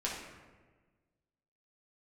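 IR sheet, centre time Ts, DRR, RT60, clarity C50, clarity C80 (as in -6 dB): 59 ms, -5.5 dB, 1.4 s, 2.0 dB, 5.0 dB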